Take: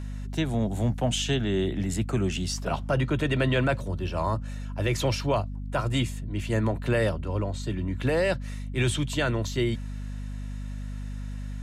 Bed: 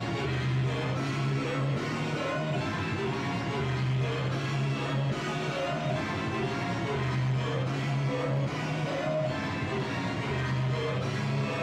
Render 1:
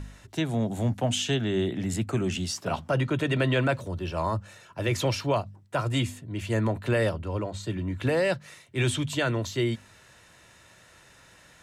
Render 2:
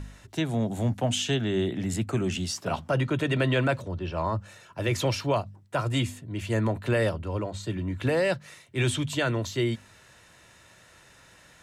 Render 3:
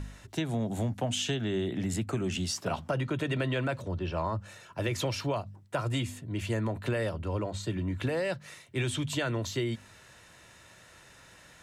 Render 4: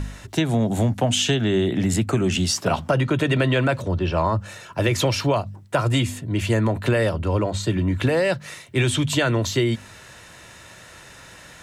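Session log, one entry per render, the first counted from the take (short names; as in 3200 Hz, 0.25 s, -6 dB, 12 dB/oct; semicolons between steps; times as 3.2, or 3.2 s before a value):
de-hum 50 Hz, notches 5
3.82–4.39 air absorption 100 m
compressor, threshold -27 dBFS, peak gain reduction 7 dB
gain +10.5 dB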